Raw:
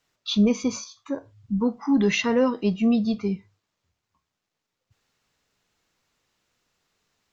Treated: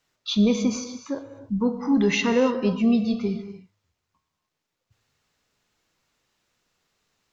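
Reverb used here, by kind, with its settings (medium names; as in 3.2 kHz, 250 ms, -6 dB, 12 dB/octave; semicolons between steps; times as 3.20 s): gated-style reverb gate 320 ms flat, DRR 8.5 dB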